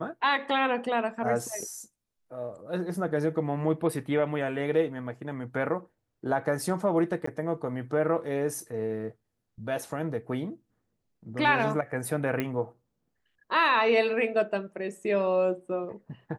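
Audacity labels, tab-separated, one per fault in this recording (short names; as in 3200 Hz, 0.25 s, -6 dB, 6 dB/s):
7.260000	7.270000	gap 14 ms
12.400000	12.400000	pop -16 dBFS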